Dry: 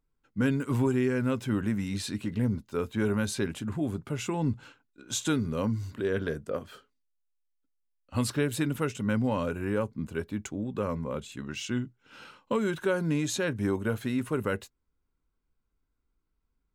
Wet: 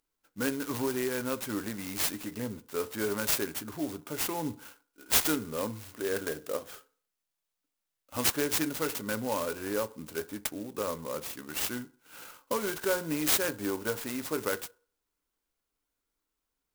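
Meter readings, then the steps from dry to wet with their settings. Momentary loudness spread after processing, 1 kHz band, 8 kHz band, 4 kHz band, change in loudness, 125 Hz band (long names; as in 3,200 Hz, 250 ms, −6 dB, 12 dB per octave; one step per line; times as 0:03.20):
12 LU, +0.5 dB, +6.0 dB, +4.0 dB, −1.0 dB, −12.5 dB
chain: bass and treble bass −15 dB, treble +12 dB
feedback delay network reverb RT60 0.46 s, low-frequency decay 0.8×, high-frequency decay 0.3×, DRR 12 dB
converter with an unsteady clock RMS 0.07 ms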